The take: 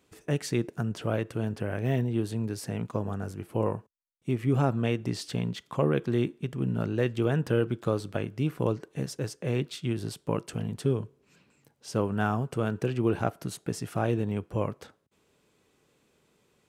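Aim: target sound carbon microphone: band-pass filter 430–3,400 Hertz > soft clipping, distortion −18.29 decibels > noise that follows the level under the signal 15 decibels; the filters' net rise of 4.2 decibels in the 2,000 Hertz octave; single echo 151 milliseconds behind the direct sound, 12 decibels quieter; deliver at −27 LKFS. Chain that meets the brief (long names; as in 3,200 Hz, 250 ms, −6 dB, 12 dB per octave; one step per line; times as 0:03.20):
band-pass filter 430–3,400 Hz
parametric band 2,000 Hz +6.5 dB
single-tap delay 151 ms −12 dB
soft clipping −20 dBFS
noise that follows the level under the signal 15 dB
level +8.5 dB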